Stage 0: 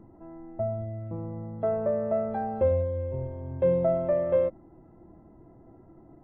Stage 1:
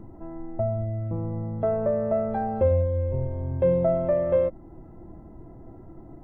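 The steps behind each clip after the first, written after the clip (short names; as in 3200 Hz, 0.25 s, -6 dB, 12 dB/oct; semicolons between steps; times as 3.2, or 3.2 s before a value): low shelf 75 Hz +10.5 dB; in parallel at -1 dB: compressor, threshold -34 dBFS, peak gain reduction 15 dB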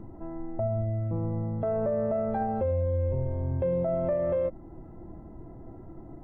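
tone controls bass 0 dB, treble -4 dB; limiter -20.5 dBFS, peak gain reduction 8.5 dB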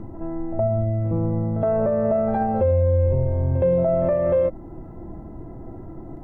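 pre-echo 67 ms -13 dB; gain +7.5 dB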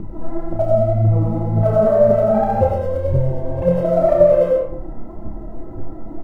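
phaser 1.9 Hz, delay 4.9 ms, feedback 64%; doubler 29 ms -5.5 dB; reverb RT60 0.55 s, pre-delay 55 ms, DRR 0 dB; gain -1.5 dB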